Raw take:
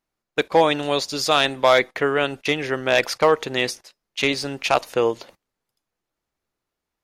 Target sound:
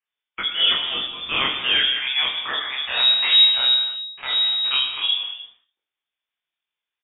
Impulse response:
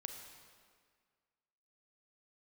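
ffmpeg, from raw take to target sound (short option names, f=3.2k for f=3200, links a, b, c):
-filter_complex "[0:a]highpass=190,bandreject=f=60:t=h:w=6,bandreject=f=120:t=h:w=6,bandreject=f=180:t=h:w=6,bandreject=f=240:t=h:w=6,bandreject=f=300:t=h:w=6,bandreject=f=360:t=h:w=6,bandreject=f=420:t=h:w=6,asplit=3[a][b][c];[a]afade=t=out:st=2.86:d=0.02[d];[b]aeval=exprs='abs(val(0))':c=same,afade=t=in:st=2.86:d=0.02,afade=t=out:st=4.7:d=0.02[e];[c]afade=t=in:st=4.7:d=0.02[f];[d][e][f]amix=inputs=3:normalize=0,flanger=delay=16.5:depth=7.8:speed=2.1,asplit=2[g][h];[h]adelay=22,volume=-4.5dB[i];[g][i]amix=inputs=2:normalize=0,acrossover=split=760[j][k];[j]adelay=50[l];[l][k]amix=inputs=2:normalize=0[m];[1:a]atrim=start_sample=2205,afade=t=out:st=0.41:d=0.01,atrim=end_sample=18522,asetrate=48510,aresample=44100[n];[m][n]afir=irnorm=-1:irlink=0,lowpass=f=3.2k:t=q:w=0.5098,lowpass=f=3.2k:t=q:w=0.6013,lowpass=f=3.2k:t=q:w=0.9,lowpass=f=3.2k:t=q:w=2.563,afreqshift=-3800,volume=4.5dB"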